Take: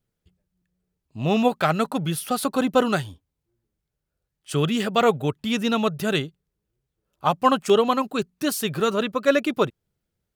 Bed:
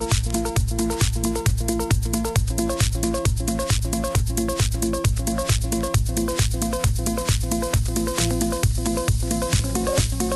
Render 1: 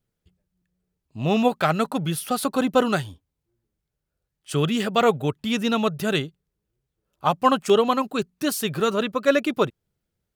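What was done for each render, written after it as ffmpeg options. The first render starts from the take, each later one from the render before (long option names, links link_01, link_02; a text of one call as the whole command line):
ffmpeg -i in.wav -af anull out.wav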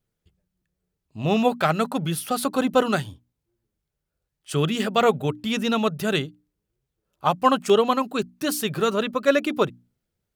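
ffmpeg -i in.wav -af "bandreject=frequency=60:width_type=h:width=6,bandreject=frequency=120:width_type=h:width=6,bandreject=frequency=180:width_type=h:width=6,bandreject=frequency=240:width_type=h:width=6,bandreject=frequency=300:width_type=h:width=6" out.wav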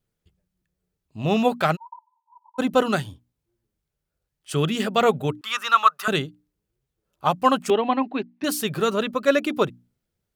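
ffmpeg -i in.wav -filter_complex "[0:a]asplit=3[link_01][link_02][link_03];[link_01]afade=type=out:start_time=1.75:duration=0.02[link_04];[link_02]asuperpass=centerf=940:order=12:qfactor=7.3,afade=type=in:start_time=1.75:duration=0.02,afade=type=out:start_time=2.58:duration=0.02[link_05];[link_03]afade=type=in:start_time=2.58:duration=0.02[link_06];[link_04][link_05][link_06]amix=inputs=3:normalize=0,asettb=1/sr,asplit=3[link_07][link_08][link_09];[link_07]atrim=end=5.414[link_10];[link_08]atrim=start=5.41:end=6.08,asetpts=PTS-STARTPTS,afade=type=in:duration=0.004:curve=qsin,afade=type=out:start_time=0.666:duration=0.004:curve=qsin,highpass=frequency=1200:width_type=q:width=8[link_11];[link_09]atrim=start=6.076[link_12];[link_10][link_11]acrossfade=duration=0.004:curve1=hsin:curve2=qsin[link_13];[link_13][link_12]acrossfade=duration=0.004:curve1=qsin:curve2=hsin,asettb=1/sr,asplit=3[link_14][link_15][link_16];[link_14]atrim=end=7.704[link_17];[link_15]atrim=start=7.7:end=8.44,asetpts=PTS-STARTPTS,afade=type=in:duration=0.004:curve=qsin,afade=type=out:start_time=0.736:duration=0.004:curve=qsin,highpass=270,equalizer=frequency=270:width_type=q:width=4:gain=7,equalizer=frequency=470:width_type=q:width=4:gain=-6,equalizer=frequency=810:width_type=q:width=4:gain=5,equalizer=frequency=1300:width_type=q:width=4:gain=-10,equalizer=frequency=2000:width_type=q:width=4:gain=4,equalizer=frequency=3200:width_type=q:width=4:gain=-4,lowpass=frequency=3400:width=0.5412,lowpass=frequency=3400:width=1.3066[link_18];[link_16]atrim=start=8.436[link_19];[link_17][link_18]acrossfade=duration=0.004:curve1=hsin:curve2=qsin[link_20];[link_20][link_19]acrossfade=duration=0.004:curve1=qsin:curve2=hsin" out.wav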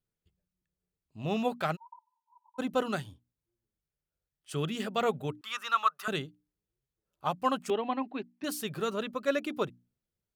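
ffmpeg -i in.wav -af "volume=-10dB" out.wav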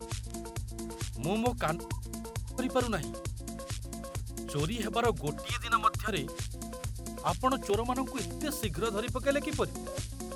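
ffmpeg -i in.wav -i bed.wav -filter_complex "[1:a]volume=-17dB[link_01];[0:a][link_01]amix=inputs=2:normalize=0" out.wav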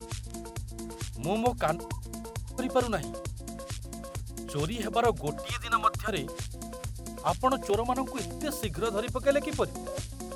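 ffmpeg -i in.wav -af "adynamicequalizer=threshold=0.00708:dfrequency=660:dqfactor=1.5:tfrequency=660:tqfactor=1.5:attack=5:release=100:ratio=0.375:range=3:mode=boostabove:tftype=bell" out.wav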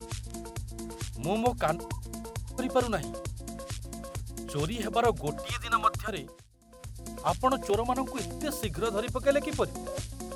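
ffmpeg -i in.wav -filter_complex "[0:a]asplit=3[link_01][link_02][link_03];[link_01]atrim=end=6.43,asetpts=PTS-STARTPTS,afade=type=out:start_time=5.95:duration=0.48:silence=0.0841395[link_04];[link_02]atrim=start=6.43:end=6.65,asetpts=PTS-STARTPTS,volume=-21.5dB[link_05];[link_03]atrim=start=6.65,asetpts=PTS-STARTPTS,afade=type=in:duration=0.48:silence=0.0841395[link_06];[link_04][link_05][link_06]concat=n=3:v=0:a=1" out.wav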